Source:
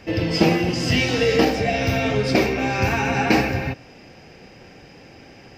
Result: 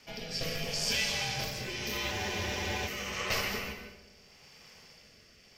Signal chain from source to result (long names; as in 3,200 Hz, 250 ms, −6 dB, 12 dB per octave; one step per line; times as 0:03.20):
first-order pre-emphasis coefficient 0.9
in parallel at −1 dB: brickwall limiter −28 dBFS, peak gain reduction 10 dB
on the sum: ring modulation 330 Hz
rotating-speaker cabinet horn 0.8 Hz
on a send: feedback echo with a low-pass in the loop 66 ms, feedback 78%, low-pass 2,000 Hz, level −14 dB
on the sum: dense smooth reverb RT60 0.64 s, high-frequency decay 0.85×, pre-delay 115 ms, DRR 7 dB
frozen spectrum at 0:02.14, 0.73 s